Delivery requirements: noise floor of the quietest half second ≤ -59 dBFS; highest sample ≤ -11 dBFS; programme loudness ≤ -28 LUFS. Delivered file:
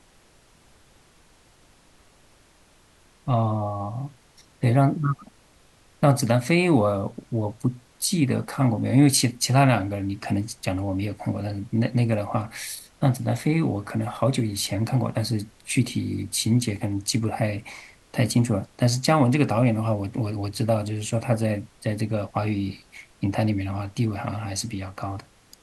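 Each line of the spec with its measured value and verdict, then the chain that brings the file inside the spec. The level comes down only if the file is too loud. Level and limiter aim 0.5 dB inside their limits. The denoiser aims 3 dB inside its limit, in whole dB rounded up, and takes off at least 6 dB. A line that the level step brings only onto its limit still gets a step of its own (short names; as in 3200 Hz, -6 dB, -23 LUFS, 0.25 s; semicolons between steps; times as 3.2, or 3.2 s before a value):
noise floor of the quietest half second -57 dBFS: fail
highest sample -4.5 dBFS: fail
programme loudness -24.5 LUFS: fail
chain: gain -4 dB; limiter -11.5 dBFS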